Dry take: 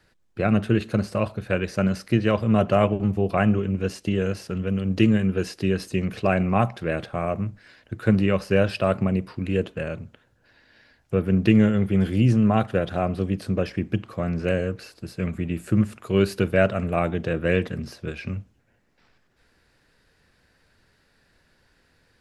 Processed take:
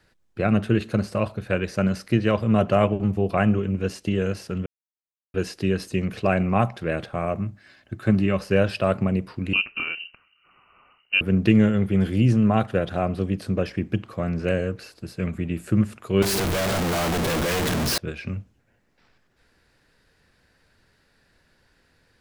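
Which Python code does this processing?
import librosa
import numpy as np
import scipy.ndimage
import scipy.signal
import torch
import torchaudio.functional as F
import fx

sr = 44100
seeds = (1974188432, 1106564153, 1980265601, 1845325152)

y = fx.notch_comb(x, sr, f0_hz=480.0, at=(7.39, 8.38))
y = fx.freq_invert(y, sr, carrier_hz=2900, at=(9.53, 11.21))
y = fx.clip_1bit(y, sr, at=(16.22, 17.98))
y = fx.edit(y, sr, fx.silence(start_s=4.66, length_s=0.68), tone=tone)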